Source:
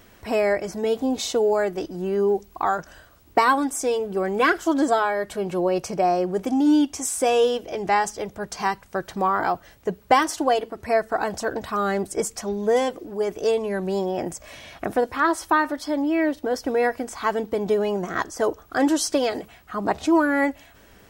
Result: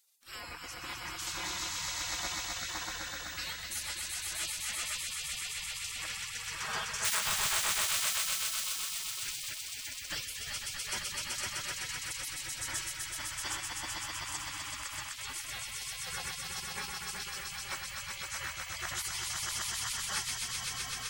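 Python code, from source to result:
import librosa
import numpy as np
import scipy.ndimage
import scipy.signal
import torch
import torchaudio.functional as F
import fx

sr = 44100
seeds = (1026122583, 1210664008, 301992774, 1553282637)

y = fx.schmitt(x, sr, flips_db=-24.5, at=(7.04, 7.62))
y = fx.echo_swell(y, sr, ms=127, loudest=5, wet_db=-4)
y = fx.spec_gate(y, sr, threshold_db=-25, keep='weak')
y = y * librosa.db_to_amplitude(-4.5)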